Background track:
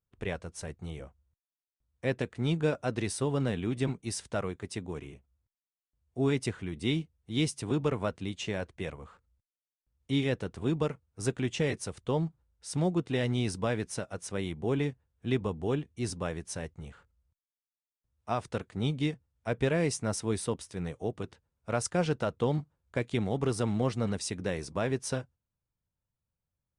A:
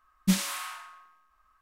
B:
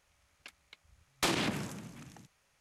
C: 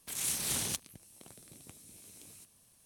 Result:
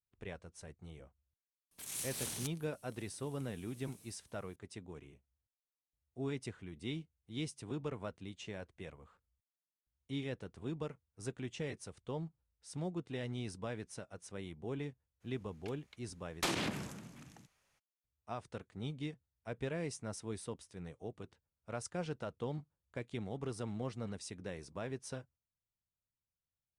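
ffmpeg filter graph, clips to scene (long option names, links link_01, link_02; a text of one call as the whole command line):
ffmpeg -i bed.wav -i cue0.wav -i cue1.wav -i cue2.wav -filter_complex "[0:a]volume=-11.5dB[link_01];[3:a]atrim=end=2.85,asetpts=PTS-STARTPTS,volume=-8dB,afade=type=in:duration=0.004:curve=hsin,afade=type=out:start_time=2.846:duration=0.004:curve=hsin,adelay=1710[link_02];[2:a]atrim=end=2.6,asetpts=PTS-STARTPTS,volume=-4.5dB,afade=type=in:duration=0.02,afade=type=out:start_time=2.58:duration=0.02,adelay=15200[link_03];[link_01][link_02][link_03]amix=inputs=3:normalize=0" out.wav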